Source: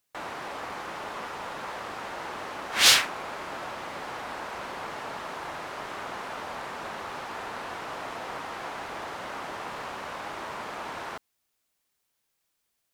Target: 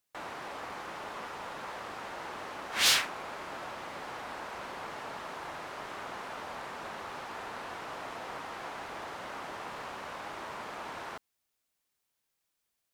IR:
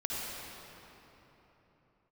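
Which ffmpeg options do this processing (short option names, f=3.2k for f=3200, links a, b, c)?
-af "asoftclip=type=tanh:threshold=-12dB,volume=-4.5dB"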